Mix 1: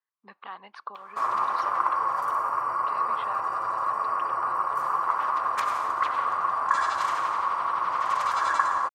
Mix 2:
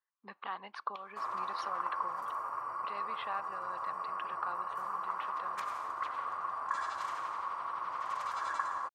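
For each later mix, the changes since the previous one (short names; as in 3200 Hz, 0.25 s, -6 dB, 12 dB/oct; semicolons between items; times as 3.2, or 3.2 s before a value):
background -11.5 dB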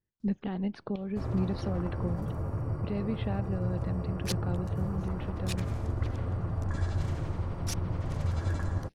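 second sound: unmuted; master: remove resonant high-pass 1100 Hz, resonance Q 7.2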